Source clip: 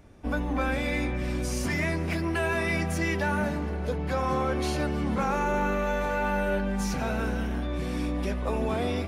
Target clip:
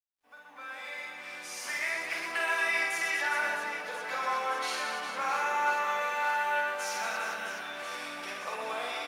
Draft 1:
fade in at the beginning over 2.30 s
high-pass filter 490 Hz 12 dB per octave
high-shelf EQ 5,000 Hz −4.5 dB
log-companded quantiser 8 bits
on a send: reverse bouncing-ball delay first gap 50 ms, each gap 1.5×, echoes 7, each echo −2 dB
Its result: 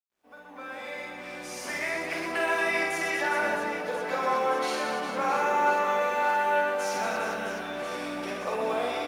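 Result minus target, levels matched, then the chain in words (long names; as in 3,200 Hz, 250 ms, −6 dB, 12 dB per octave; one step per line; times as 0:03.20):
500 Hz band +6.5 dB
fade in at the beginning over 2.30 s
high-pass filter 1,100 Hz 12 dB per octave
high-shelf EQ 5,000 Hz −4.5 dB
log-companded quantiser 8 bits
on a send: reverse bouncing-ball delay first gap 50 ms, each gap 1.5×, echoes 7, each echo −2 dB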